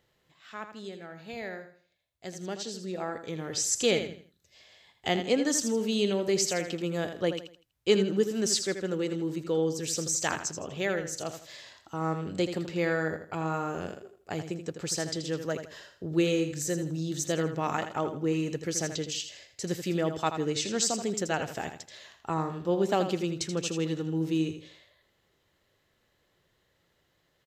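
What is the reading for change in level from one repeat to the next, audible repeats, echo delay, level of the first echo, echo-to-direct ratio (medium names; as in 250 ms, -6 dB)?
-10.0 dB, 3, 81 ms, -9.0 dB, -8.5 dB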